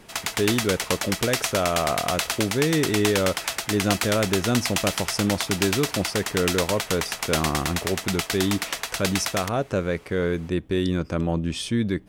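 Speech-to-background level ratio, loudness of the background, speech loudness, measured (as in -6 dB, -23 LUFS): 1.5 dB, -27.0 LUFS, -25.5 LUFS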